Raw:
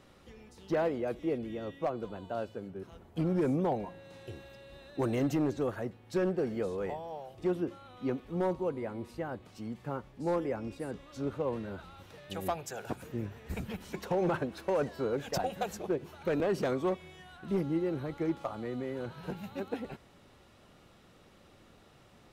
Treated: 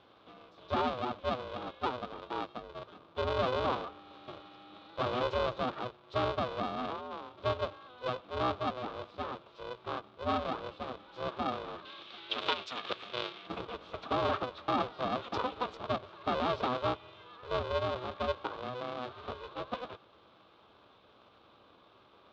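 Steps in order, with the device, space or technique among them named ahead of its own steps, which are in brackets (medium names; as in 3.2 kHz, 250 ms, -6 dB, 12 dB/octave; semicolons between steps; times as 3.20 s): ring modulator pedal into a guitar cabinet (polarity switched at an audio rate 250 Hz; cabinet simulation 93–4000 Hz, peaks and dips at 150 Hz -10 dB, 580 Hz +3 dB, 1.2 kHz +9 dB, 1.9 kHz -8 dB, 3.6 kHz +7 dB); 11.85–13.47 s: frequency weighting D; trim -2.5 dB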